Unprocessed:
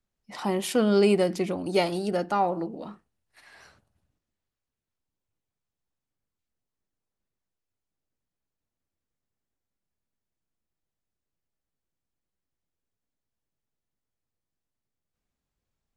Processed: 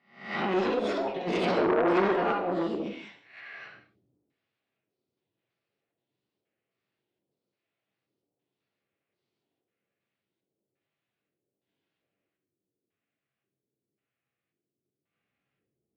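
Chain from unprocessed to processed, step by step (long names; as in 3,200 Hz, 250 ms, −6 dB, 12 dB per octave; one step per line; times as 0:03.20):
peak hold with a rise ahead of every peak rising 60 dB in 0.48 s
high-pass filter 170 Hz 12 dB per octave
high-shelf EQ 5,100 Hz −5 dB
notch filter 930 Hz, Q 5.7
compressor whose output falls as the input rises −28 dBFS, ratio −0.5
auto-filter low-pass square 0.93 Hz 380–2,500 Hz
harmonic generator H 2 −17 dB, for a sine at −12.5 dBFS
delay with pitch and tempo change per echo 338 ms, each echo +5 semitones, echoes 2
convolution reverb, pre-delay 3 ms, DRR 2 dB
saturating transformer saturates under 1,300 Hz
level −2.5 dB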